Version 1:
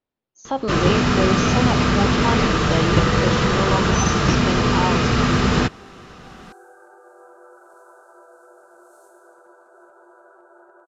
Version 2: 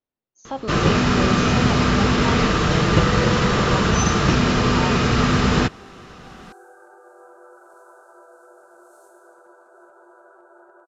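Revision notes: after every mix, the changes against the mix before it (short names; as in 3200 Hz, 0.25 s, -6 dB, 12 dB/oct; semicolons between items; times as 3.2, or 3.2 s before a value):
speech -5.5 dB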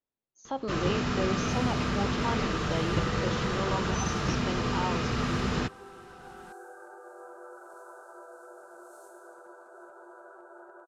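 speech -4.0 dB; first sound -11.5 dB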